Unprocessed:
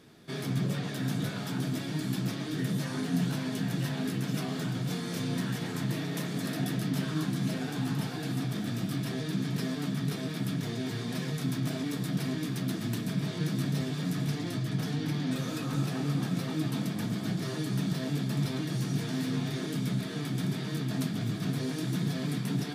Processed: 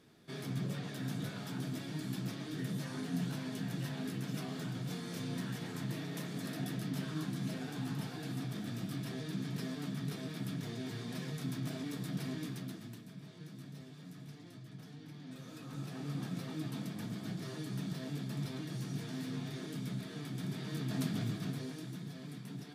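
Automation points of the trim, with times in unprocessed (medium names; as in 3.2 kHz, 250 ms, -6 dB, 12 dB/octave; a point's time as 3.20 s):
12.46 s -7.5 dB
13.07 s -19 dB
15.13 s -19 dB
16.19 s -9 dB
20.38 s -9 dB
21.15 s -3 dB
22.02 s -14.5 dB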